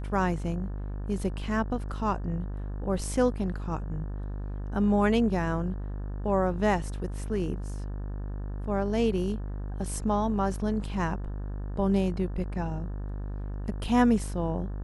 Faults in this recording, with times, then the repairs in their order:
buzz 50 Hz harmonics 36 -34 dBFS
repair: de-hum 50 Hz, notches 36

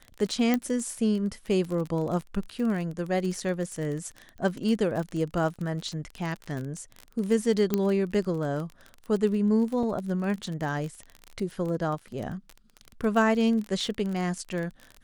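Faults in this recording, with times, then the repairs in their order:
crackle 29 per s -31 dBFS
0.54 s: pop -12 dBFS
7.74 s: pop -11 dBFS
9.83 s: dropout 2.7 ms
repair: de-click; interpolate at 9.83 s, 2.7 ms

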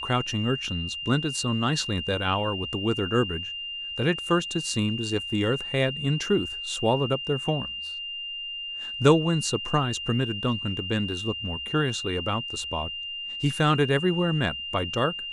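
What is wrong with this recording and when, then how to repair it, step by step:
whine 2.8 kHz -32 dBFS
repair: band-stop 2.8 kHz, Q 30

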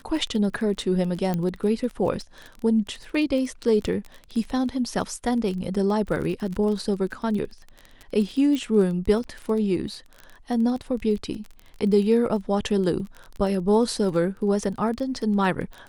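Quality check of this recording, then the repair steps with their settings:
crackle 22 per s -30 dBFS
1.34 s: pop -14 dBFS
8.55 s: pop -17 dBFS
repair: de-click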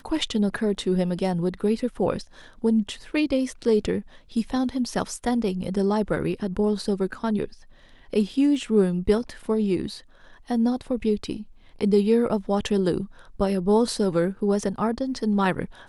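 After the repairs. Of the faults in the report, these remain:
8.55 s: pop

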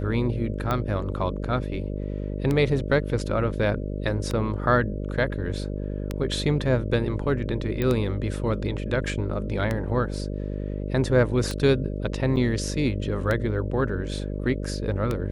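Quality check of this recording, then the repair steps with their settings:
buzz 50 Hz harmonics 12 -30 dBFS
tick 33 1/3 rpm -13 dBFS
7.82 s: pop -14 dBFS
12.36–12.37 s: dropout 7.2 ms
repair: de-click; de-hum 50 Hz, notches 12; interpolate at 12.36 s, 7.2 ms

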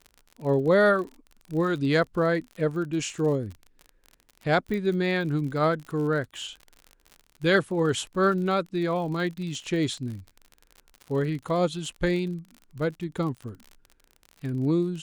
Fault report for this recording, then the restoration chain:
crackle 54 per s -35 dBFS
4.74 s: pop -21 dBFS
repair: de-click

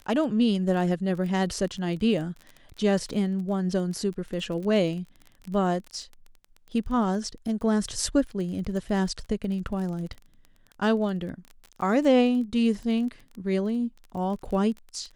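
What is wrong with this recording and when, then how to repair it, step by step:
crackle 23 per s -34 dBFS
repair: de-click

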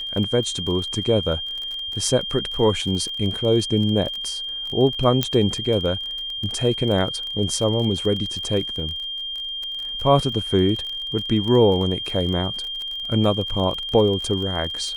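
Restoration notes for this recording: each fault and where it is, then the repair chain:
crackle 29 per s -28 dBFS
whine 3.2 kHz -27 dBFS
5.23 s: pop -4 dBFS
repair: de-click; band-stop 3.2 kHz, Q 30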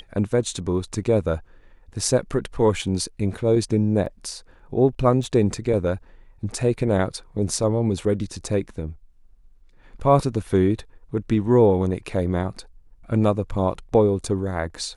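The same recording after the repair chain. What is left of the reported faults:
5.23 s: pop

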